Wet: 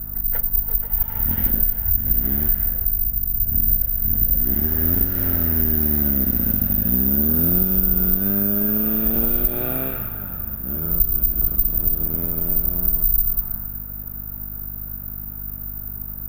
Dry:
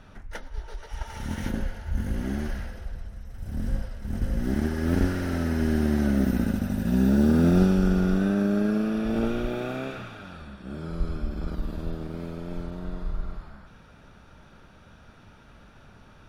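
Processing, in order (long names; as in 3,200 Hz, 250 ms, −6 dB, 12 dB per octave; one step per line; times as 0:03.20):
low-pass that shuts in the quiet parts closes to 1,400 Hz, open at −18 dBFS
low-shelf EQ 77 Hz +11 dB
downward compressor 4 to 1, threshold −24 dBFS, peak gain reduction 11.5 dB
mains hum 50 Hz, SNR 11 dB
bad sample-rate conversion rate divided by 3×, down none, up zero stuff
level +2.5 dB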